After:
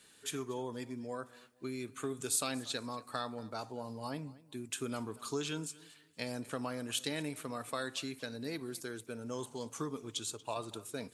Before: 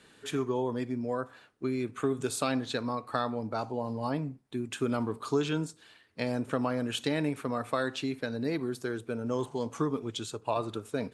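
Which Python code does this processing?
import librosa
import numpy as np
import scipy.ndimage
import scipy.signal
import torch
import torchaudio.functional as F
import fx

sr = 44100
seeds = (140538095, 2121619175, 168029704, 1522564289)

y = scipy.signal.lfilter([1.0, -0.8], [1.0], x)
y = fx.echo_warbled(y, sr, ms=234, feedback_pct=31, rate_hz=2.8, cents=55, wet_db=-21)
y = F.gain(torch.from_numpy(y), 4.5).numpy()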